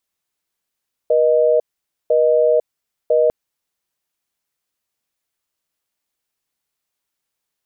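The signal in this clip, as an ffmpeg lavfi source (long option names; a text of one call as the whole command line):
ffmpeg -f lavfi -i "aevalsrc='0.2*(sin(2*PI*480*t)+sin(2*PI*620*t))*clip(min(mod(t,1),0.5-mod(t,1))/0.005,0,1)':duration=2.2:sample_rate=44100" out.wav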